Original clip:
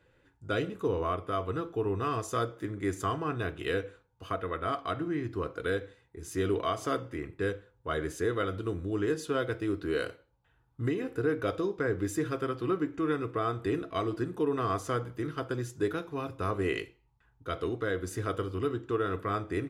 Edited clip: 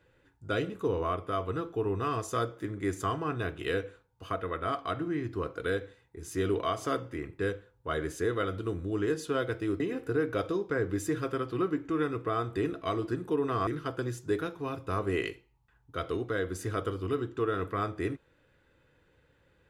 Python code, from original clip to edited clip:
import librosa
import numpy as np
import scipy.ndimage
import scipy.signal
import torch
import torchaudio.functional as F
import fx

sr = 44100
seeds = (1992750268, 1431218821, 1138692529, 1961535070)

y = fx.edit(x, sr, fx.cut(start_s=9.8, length_s=1.09),
    fx.cut(start_s=14.76, length_s=0.43), tone=tone)